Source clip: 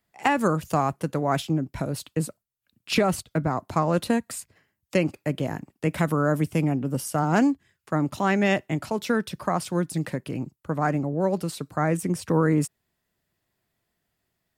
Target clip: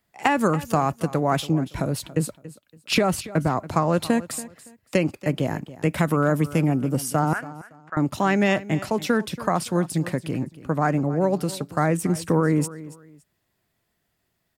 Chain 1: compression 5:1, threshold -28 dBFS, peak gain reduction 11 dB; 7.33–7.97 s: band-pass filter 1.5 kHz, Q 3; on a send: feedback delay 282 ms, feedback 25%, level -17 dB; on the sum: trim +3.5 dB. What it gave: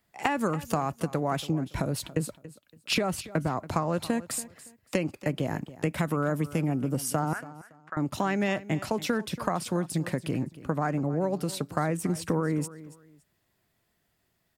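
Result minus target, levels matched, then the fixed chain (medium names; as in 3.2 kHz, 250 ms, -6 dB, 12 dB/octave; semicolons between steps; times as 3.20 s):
compression: peak gain reduction +7.5 dB
compression 5:1, threshold -18.5 dBFS, peak gain reduction 3.5 dB; 7.33–7.97 s: band-pass filter 1.5 kHz, Q 3; on a send: feedback delay 282 ms, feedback 25%, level -17 dB; on the sum: trim +3.5 dB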